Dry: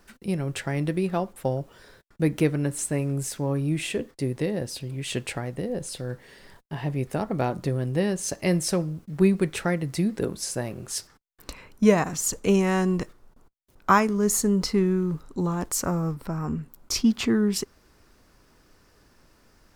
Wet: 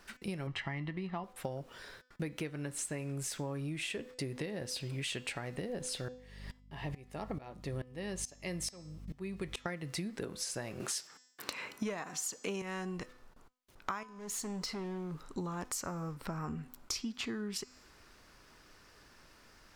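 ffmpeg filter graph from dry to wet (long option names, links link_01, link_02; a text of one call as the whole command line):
ffmpeg -i in.wav -filter_complex "[0:a]asettb=1/sr,asplit=3[link_01][link_02][link_03];[link_01]atrim=end=0.474[link_04];[link_02]atrim=start=0.47:end=1.24,asetpts=PTS-STARTPTS,afade=type=in:duration=0.004:curve=qsin,afade=type=out:start_time=0.766:duration=0.004:curve=qsin,lowpass=3200,aecho=1:1:1:0.62,atrim=end_sample=33957[link_05];[link_03]atrim=start=1.236[link_06];[link_04][link_05]acrossfade=duration=0.004:curve1=hsin:curve2=qsin[link_07];[link_07][link_06]acrossfade=duration=0.004:curve1=qsin:curve2=hsin,asettb=1/sr,asplit=3[link_08][link_09][link_10];[link_08]atrim=end=6.084[link_11];[link_09]atrim=start=6.08:end=9.66,asetpts=PTS-STARTPTS,afade=type=in:duration=0.004:curve=qsin,afade=type=out:start_time=3.576:duration=0.004:curve=qsin,bandreject=frequency=1500:width=8,aeval=exprs='val(0)+0.0158*(sin(2*PI*50*n/s)+sin(2*PI*2*50*n/s)/2+sin(2*PI*3*50*n/s)/3+sin(2*PI*4*50*n/s)/4+sin(2*PI*5*50*n/s)/5)':channel_layout=same,aeval=exprs='val(0)*pow(10,-25*if(lt(mod(-2.3*n/s,1),2*abs(-2.3)/1000),1-mod(-2.3*n/s,1)/(2*abs(-2.3)/1000),(mod(-2.3*n/s,1)-2*abs(-2.3)/1000)/(1-2*abs(-2.3)/1000))/20)':channel_layout=same[link_12];[link_10]atrim=start=9.656[link_13];[link_11][link_12]acrossfade=duration=0.004:curve1=hsin:curve2=qsin[link_14];[link_14][link_13]acrossfade=duration=0.004:curve1=qsin:curve2=hsin,asettb=1/sr,asplit=3[link_15][link_16][link_17];[link_15]atrim=end=10.804[link_18];[link_16]atrim=start=10.8:end=12.62,asetpts=PTS-STARTPTS,afade=type=in:duration=0.004:curve=qsin,afade=type=out:start_time=1.816:duration=0.004:curve=qsin,highpass=190,acontrast=89[link_19];[link_17]atrim=start=12.616[link_20];[link_18][link_19]acrossfade=duration=0.004:curve1=hsin:curve2=qsin[link_21];[link_21][link_20]acrossfade=duration=0.004:curve1=qsin:curve2=hsin,asettb=1/sr,asplit=3[link_22][link_23][link_24];[link_22]atrim=end=14.034[link_25];[link_23]atrim=start=14.03:end=15.3,asetpts=PTS-STARTPTS,afade=type=in:duration=0.004:curve=qsin,afade=type=out:start_time=1.266:duration=0.004:curve=qsin,acompressor=threshold=-37dB:ratio=2:attack=3.2:release=140:knee=1:detection=peak,equalizer=frequency=63:width_type=o:width=0.88:gain=-12.5,asoftclip=type=hard:threshold=-31.5dB[link_26];[link_24]atrim=start=15.296[link_27];[link_25][link_26]acrossfade=duration=0.004:curve1=hsin:curve2=qsin[link_28];[link_28][link_27]acrossfade=duration=0.004:curve1=qsin:curve2=hsin,equalizer=frequency=2600:width=0.31:gain=8.5,bandreject=frequency=252:width_type=h:width=4,bandreject=frequency=504:width_type=h:width=4,bandreject=frequency=756:width_type=h:width=4,bandreject=frequency=1008:width_type=h:width=4,bandreject=frequency=1260:width_type=h:width=4,bandreject=frequency=1512:width_type=h:width=4,bandreject=frequency=1764:width_type=h:width=4,bandreject=frequency=2016:width_type=h:width=4,bandreject=frequency=2268:width_type=h:width=4,bandreject=frequency=2520:width_type=h:width=4,bandreject=frequency=2772:width_type=h:width=4,bandreject=frequency=3024:width_type=h:width=4,bandreject=frequency=3276:width_type=h:width=4,bandreject=frequency=3528:width_type=h:width=4,bandreject=frequency=3780:width_type=h:width=4,bandreject=frequency=4032:width_type=h:width=4,bandreject=frequency=4284:width_type=h:width=4,bandreject=frequency=4536:width_type=h:width=4,bandreject=frequency=4788:width_type=h:width=4,bandreject=frequency=5040:width_type=h:width=4,bandreject=frequency=5292:width_type=h:width=4,bandreject=frequency=5544:width_type=h:width=4,bandreject=frequency=5796:width_type=h:width=4,bandreject=frequency=6048:width_type=h:width=4,bandreject=frequency=6300:width_type=h:width=4,bandreject=frequency=6552:width_type=h:width=4,bandreject=frequency=6804:width_type=h:width=4,bandreject=frequency=7056:width_type=h:width=4,bandreject=frequency=7308:width_type=h:width=4,bandreject=frequency=7560:width_type=h:width=4,bandreject=frequency=7812:width_type=h:width=4,bandreject=frequency=8064:width_type=h:width=4,acompressor=threshold=-30dB:ratio=16,volume=-5dB" out.wav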